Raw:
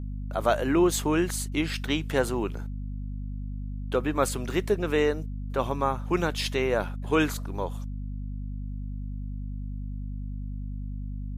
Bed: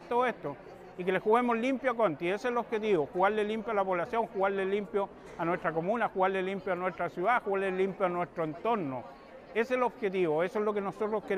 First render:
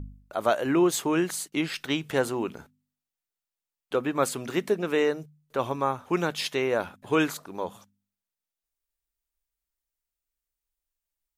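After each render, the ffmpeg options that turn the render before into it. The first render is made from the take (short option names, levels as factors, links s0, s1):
-af "bandreject=f=50:t=h:w=4,bandreject=f=100:t=h:w=4,bandreject=f=150:t=h:w=4,bandreject=f=200:t=h:w=4,bandreject=f=250:t=h:w=4"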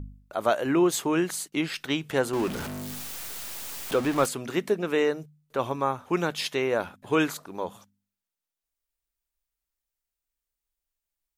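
-filter_complex "[0:a]asettb=1/sr,asplit=3[s0][s1][s2];[s0]atrim=end=2.334[s3];[s1]atrim=start=2.33:end=4.26,asetpts=PTS-STARTPTS,afade=t=in:d=0.004:c=qsin,afade=t=out:st=1.926:d=0.004:c=qsin,aeval=exprs='val(0)+0.5*0.0355*sgn(val(0))':c=same[s4];[s2]atrim=start=4.256[s5];[s3][s4]acrossfade=d=0.004:c1=hsin:c2=qsin[s6];[s6][s5]acrossfade=d=0.004:c1=qsin:c2=hsin"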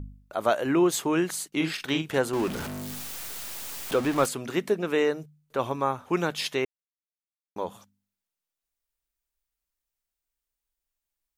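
-filter_complex "[0:a]asettb=1/sr,asplit=3[s0][s1][s2];[s0]atrim=end=1.554[s3];[s1]atrim=start=1.55:end=2.18,asetpts=PTS-STARTPTS,afade=t=in:d=0.004:c=qsin,afade=t=out:st=0.626:d=0.004:c=qsin,asplit=2[s4][s5];[s5]adelay=44,volume=0.501[s6];[s4][s6]amix=inputs=2:normalize=0,atrim=end_sample=27783[s7];[s2]atrim=start=2.176[s8];[s3][s7]acrossfade=d=0.004:c1=hsin:c2=qsin[s9];[s9][s8]acrossfade=d=0.004:c1=qsin:c2=hsin,asplit=3[s10][s11][s12];[s10]atrim=end=6.65,asetpts=PTS-STARTPTS,afade=t=out:st=6.646:d=0.004:c=hsin[s13];[s11]atrim=start=6.65:end=7.56,asetpts=PTS-STARTPTS,volume=0[s14];[s12]atrim=start=7.56,asetpts=PTS-STARTPTS,afade=t=in:d=0.004:c=hsin[s15];[s13][s14][s15]concat=n=3:v=0:a=1"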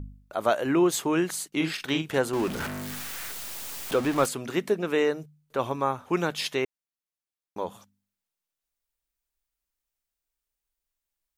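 -filter_complex "[0:a]asettb=1/sr,asplit=3[s0][s1][s2];[s0]atrim=end=2.604[s3];[s1]atrim=start=2.6:end=3.32,asetpts=PTS-STARTPTS,afade=t=in:d=0.004:c=qsin,afade=t=out:st=0.716:d=0.004:c=qsin,equalizer=f=1700:t=o:w=1.3:g=7.5[s4];[s2]atrim=start=3.316[s5];[s3][s4]acrossfade=d=0.004:c1=hsin:c2=qsin[s6];[s6][s5]acrossfade=d=0.004:c1=qsin:c2=hsin"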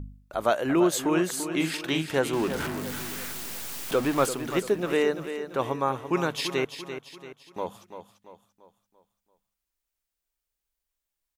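-af "aecho=1:1:340|680|1020|1360|1700:0.316|0.139|0.0612|0.0269|0.0119"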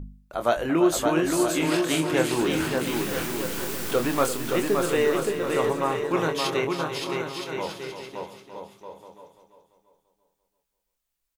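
-filter_complex "[0:a]asplit=2[s0][s1];[s1]adelay=25,volume=0.447[s2];[s0][s2]amix=inputs=2:normalize=0,aecho=1:1:570|969|1248|1444|1581:0.631|0.398|0.251|0.158|0.1"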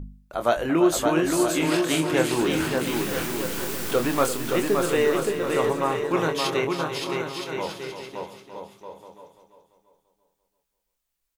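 -af "volume=1.12"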